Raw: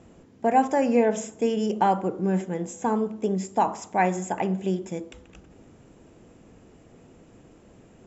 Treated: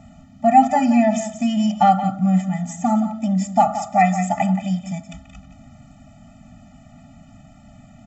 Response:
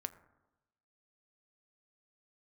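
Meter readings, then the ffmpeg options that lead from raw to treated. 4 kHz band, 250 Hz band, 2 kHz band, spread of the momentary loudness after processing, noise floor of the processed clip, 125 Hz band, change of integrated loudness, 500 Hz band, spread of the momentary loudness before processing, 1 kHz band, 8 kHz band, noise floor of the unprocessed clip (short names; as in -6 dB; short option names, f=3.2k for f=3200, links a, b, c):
+6.5 dB, +8.0 dB, +4.0 dB, 9 LU, -48 dBFS, +8.5 dB, +6.5 dB, +0.5 dB, 8 LU, +8.0 dB, n/a, -54 dBFS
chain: -af "aecho=1:1:175:0.282,afftfilt=real='re*eq(mod(floor(b*sr/1024/290),2),0)':imag='im*eq(mod(floor(b*sr/1024/290),2),0)':win_size=1024:overlap=0.75,volume=8.5dB"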